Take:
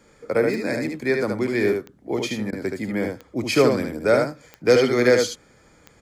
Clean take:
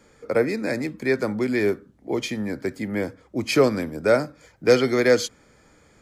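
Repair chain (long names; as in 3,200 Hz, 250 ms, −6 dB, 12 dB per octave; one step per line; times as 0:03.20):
click removal
repair the gap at 0:02.51, 15 ms
echo removal 74 ms −4.5 dB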